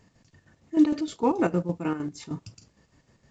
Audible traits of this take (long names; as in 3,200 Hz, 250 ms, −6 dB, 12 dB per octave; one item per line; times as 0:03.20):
chopped level 6.5 Hz, depth 60%, duty 55%
A-law companding